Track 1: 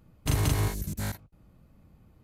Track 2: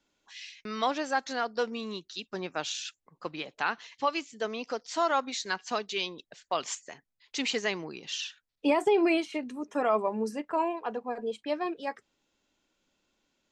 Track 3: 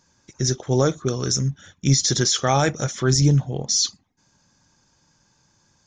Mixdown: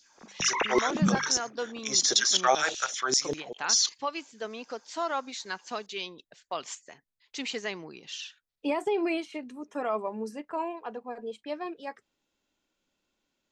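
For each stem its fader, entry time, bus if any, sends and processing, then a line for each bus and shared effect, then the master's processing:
−0.5 dB, 0.15 s, no send, three sine waves on the formant tracks; mains-hum notches 50/100/150/200 Hz
−4.0 dB, 0.00 s, no send, no processing
+1.5 dB, 0.00 s, no send, parametric band 100 Hz −6.5 dB 1.4 octaves; output level in coarse steps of 13 dB; auto-filter high-pass saw down 5.1 Hz 340–4,100 Hz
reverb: not used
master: no processing

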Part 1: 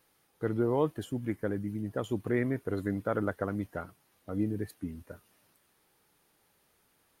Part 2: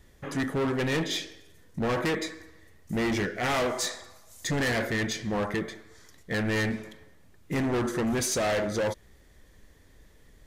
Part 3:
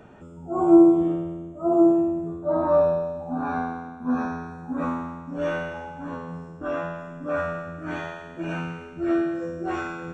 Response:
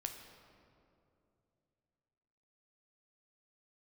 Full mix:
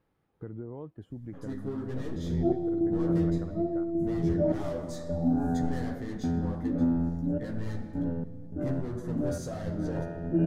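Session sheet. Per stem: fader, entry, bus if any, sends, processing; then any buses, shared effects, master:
−5.0 dB, 0.00 s, bus A, no send, high-shelf EQ 4,900 Hz −11 dB
−10.0 dB, 1.10 s, bus A, send −4 dB, parametric band 2,400 Hz −10 dB 0.79 octaves; multi-voice chorus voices 4, 1.5 Hz, delay 13 ms, depth 3 ms
+2.5 dB, 1.95 s, no bus, send −4.5 dB, downward compressor 3 to 1, threshold −30 dBFS, peak gain reduction 15 dB; sample-and-hold tremolo, depth 95%; moving average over 40 samples
bus A: 0.0 dB, high-shelf EQ 2,900 Hz −11.5 dB; downward compressor 2.5 to 1, threshold −48 dBFS, peak gain reduction 13.5 dB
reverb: on, RT60 2.7 s, pre-delay 9 ms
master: low-shelf EQ 290 Hz +10.5 dB

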